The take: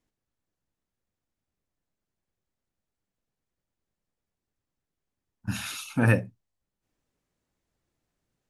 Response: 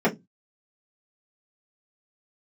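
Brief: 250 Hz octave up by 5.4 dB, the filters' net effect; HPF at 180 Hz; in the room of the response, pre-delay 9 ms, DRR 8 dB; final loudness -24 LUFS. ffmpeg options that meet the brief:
-filter_complex "[0:a]highpass=180,equalizer=f=250:t=o:g=7.5,asplit=2[a][b];[1:a]atrim=start_sample=2205,adelay=9[c];[b][c]afir=irnorm=-1:irlink=0,volume=-24.5dB[d];[a][d]amix=inputs=2:normalize=0,volume=-0.5dB"

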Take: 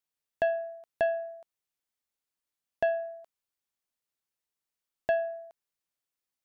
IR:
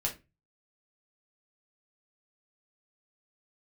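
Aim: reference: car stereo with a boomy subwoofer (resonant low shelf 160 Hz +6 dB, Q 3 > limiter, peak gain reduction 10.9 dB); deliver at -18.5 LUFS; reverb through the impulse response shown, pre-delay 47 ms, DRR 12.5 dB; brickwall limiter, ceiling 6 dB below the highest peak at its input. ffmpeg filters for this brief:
-filter_complex "[0:a]alimiter=limit=-22.5dB:level=0:latency=1,asplit=2[a][b];[1:a]atrim=start_sample=2205,adelay=47[c];[b][c]afir=irnorm=-1:irlink=0,volume=-16dB[d];[a][d]amix=inputs=2:normalize=0,lowshelf=f=160:t=q:w=3:g=6,volume=24dB,alimiter=limit=-9dB:level=0:latency=1"

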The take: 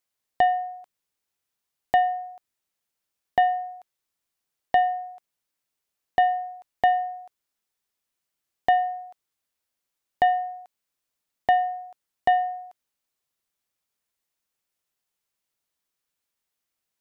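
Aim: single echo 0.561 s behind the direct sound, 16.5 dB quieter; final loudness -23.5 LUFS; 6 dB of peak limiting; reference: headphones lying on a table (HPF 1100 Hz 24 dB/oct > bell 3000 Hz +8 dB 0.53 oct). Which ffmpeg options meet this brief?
-af "alimiter=limit=-15.5dB:level=0:latency=1,highpass=f=1.1k:w=0.5412,highpass=f=1.1k:w=1.3066,equalizer=f=3k:t=o:w=0.53:g=8,aecho=1:1:561:0.15,volume=13dB"

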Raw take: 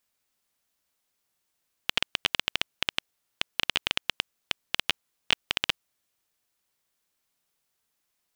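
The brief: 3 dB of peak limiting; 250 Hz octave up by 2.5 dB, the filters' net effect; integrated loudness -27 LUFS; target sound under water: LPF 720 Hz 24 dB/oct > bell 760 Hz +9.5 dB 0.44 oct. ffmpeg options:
-af "equalizer=f=250:t=o:g=3,alimiter=limit=-7.5dB:level=0:latency=1,lowpass=f=720:w=0.5412,lowpass=f=720:w=1.3066,equalizer=f=760:t=o:w=0.44:g=9.5,volume=20.5dB"

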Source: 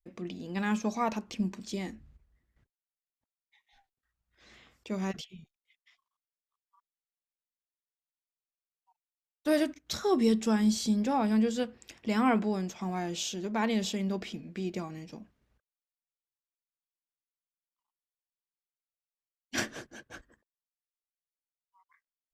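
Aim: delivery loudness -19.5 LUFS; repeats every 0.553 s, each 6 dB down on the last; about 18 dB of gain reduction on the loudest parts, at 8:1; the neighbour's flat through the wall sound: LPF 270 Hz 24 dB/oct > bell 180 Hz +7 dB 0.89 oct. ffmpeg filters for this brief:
-af "acompressor=threshold=-41dB:ratio=8,lowpass=f=270:w=0.5412,lowpass=f=270:w=1.3066,equalizer=f=180:t=o:w=0.89:g=7,aecho=1:1:553|1106|1659|2212|2765|3318:0.501|0.251|0.125|0.0626|0.0313|0.0157,volume=23dB"

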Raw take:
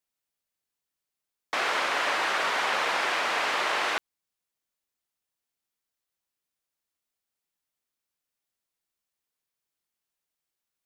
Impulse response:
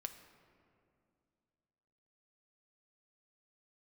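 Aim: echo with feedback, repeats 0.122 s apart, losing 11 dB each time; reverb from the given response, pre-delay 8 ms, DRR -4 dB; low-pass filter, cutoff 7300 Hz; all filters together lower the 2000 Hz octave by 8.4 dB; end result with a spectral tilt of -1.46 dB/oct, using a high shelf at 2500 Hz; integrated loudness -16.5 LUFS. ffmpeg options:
-filter_complex "[0:a]lowpass=7.3k,equalizer=f=2k:t=o:g=-9,highshelf=f=2.5k:g=-4.5,aecho=1:1:122|244|366:0.282|0.0789|0.0221,asplit=2[a][b];[1:a]atrim=start_sample=2205,adelay=8[c];[b][c]afir=irnorm=-1:irlink=0,volume=7dB[d];[a][d]amix=inputs=2:normalize=0,volume=9dB"

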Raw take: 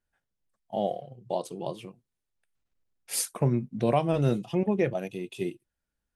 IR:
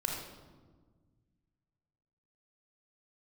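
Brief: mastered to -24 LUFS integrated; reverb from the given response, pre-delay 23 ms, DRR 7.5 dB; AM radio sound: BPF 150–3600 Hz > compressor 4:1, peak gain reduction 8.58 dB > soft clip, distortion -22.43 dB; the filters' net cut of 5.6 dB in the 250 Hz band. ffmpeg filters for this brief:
-filter_complex "[0:a]equalizer=f=250:t=o:g=-7,asplit=2[a][b];[1:a]atrim=start_sample=2205,adelay=23[c];[b][c]afir=irnorm=-1:irlink=0,volume=-11.5dB[d];[a][d]amix=inputs=2:normalize=0,highpass=150,lowpass=3.6k,acompressor=threshold=-29dB:ratio=4,asoftclip=threshold=-21.5dB,volume=12.5dB"

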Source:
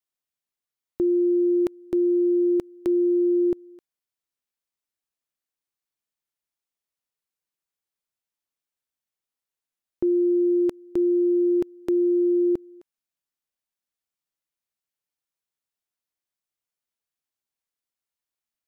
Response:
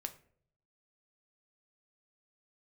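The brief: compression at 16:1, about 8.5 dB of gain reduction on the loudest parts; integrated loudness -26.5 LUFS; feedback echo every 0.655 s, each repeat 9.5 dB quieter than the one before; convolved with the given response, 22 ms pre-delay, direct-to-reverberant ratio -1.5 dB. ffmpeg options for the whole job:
-filter_complex "[0:a]acompressor=threshold=-27dB:ratio=16,aecho=1:1:655|1310|1965|2620:0.335|0.111|0.0365|0.012,asplit=2[a][b];[1:a]atrim=start_sample=2205,adelay=22[c];[b][c]afir=irnorm=-1:irlink=0,volume=3.5dB[d];[a][d]amix=inputs=2:normalize=0,volume=-0.5dB"

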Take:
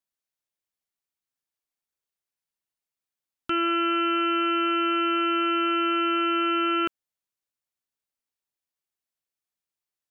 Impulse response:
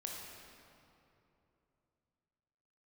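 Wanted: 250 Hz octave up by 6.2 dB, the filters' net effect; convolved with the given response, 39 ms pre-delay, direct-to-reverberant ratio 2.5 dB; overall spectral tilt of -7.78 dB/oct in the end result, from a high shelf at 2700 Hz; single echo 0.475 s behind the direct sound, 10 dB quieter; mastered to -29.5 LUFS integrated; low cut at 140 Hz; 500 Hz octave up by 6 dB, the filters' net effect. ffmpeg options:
-filter_complex "[0:a]highpass=140,equalizer=f=250:t=o:g=7,equalizer=f=500:t=o:g=5.5,highshelf=f=2.7k:g=-7,aecho=1:1:475:0.316,asplit=2[a][b];[1:a]atrim=start_sample=2205,adelay=39[c];[b][c]afir=irnorm=-1:irlink=0,volume=-1.5dB[d];[a][d]amix=inputs=2:normalize=0,volume=-8dB"

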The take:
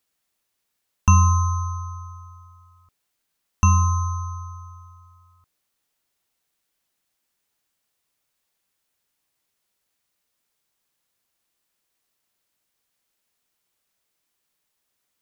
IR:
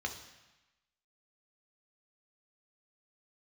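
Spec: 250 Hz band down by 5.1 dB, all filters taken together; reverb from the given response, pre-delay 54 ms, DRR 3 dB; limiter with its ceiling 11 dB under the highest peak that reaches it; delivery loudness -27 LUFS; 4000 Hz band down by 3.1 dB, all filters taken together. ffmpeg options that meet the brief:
-filter_complex "[0:a]equalizer=f=250:t=o:g=-8,equalizer=f=4k:t=o:g=-5.5,alimiter=limit=-16dB:level=0:latency=1,asplit=2[a][b];[1:a]atrim=start_sample=2205,adelay=54[c];[b][c]afir=irnorm=-1:irlink=0,volume=-6dB[d];[a][d]amix=inputs=2:normalize=0"

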